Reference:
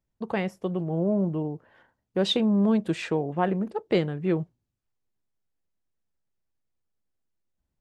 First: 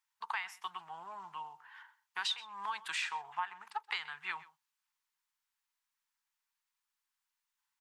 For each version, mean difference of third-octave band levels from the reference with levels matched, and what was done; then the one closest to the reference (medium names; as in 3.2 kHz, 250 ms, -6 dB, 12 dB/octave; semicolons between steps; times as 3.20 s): 15.0 dB: elliptic high-pass 910 Hz, stop band 40 dB; compression 10:1, threshold -39 dBFS, peak gain reduction 17 dB; on a send: delay 128 ms -19.5 dB; on the sum: trim +6 dB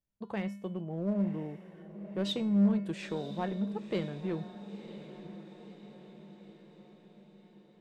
4.0 dB: feedback comb 200 Hz, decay 0.56 s, harmonics odd, mix 80%; in parallel at -5 dB: hard clipper -34 dBFS, distortion -5 dB; on the sum: echo that smears into a reverb 1008 ms, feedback 55%, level -13 dB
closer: second